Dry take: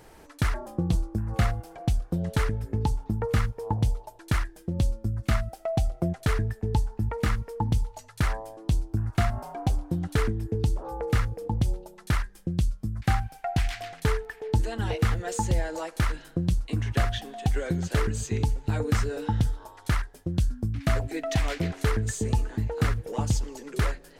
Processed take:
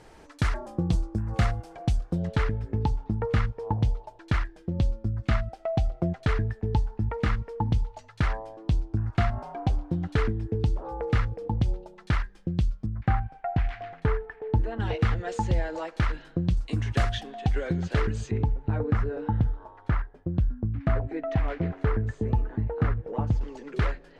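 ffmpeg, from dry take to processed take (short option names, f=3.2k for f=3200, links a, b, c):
-af "asetnsamples=n=441:p=0,asendcmd='2.27 lowpass f 3900;12.86 lowpass f 1700;14.8 lowpass f 3700;16.57 lowpass f 7800;17.23 lowpass f 3900;18.31 lowpass f 1500;23.41 lowpass f 3200',lowpass=7.3k"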